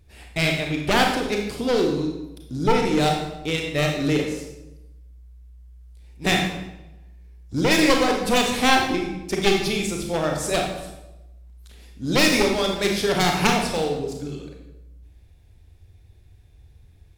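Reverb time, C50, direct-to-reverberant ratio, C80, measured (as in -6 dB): 0.95 s, 4.0 dB, 1.0 dB, 7.0 dB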